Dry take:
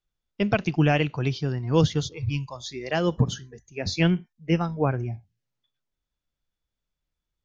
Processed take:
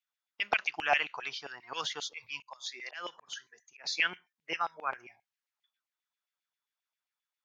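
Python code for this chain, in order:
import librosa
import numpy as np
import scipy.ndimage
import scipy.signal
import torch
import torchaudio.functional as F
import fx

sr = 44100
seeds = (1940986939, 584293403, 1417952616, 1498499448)

y = fx.auto_swell(x, sr, attack_ms=228.0, at=(2.42, 3.84))
y = fx.filter_lfo_highpass(y, sr, shape='saw_down', hz=7.5, low_hz=760.0, high_hz=2500.0, q=2.6)
y = y * 10.0 ** (-4.5 / 20.0)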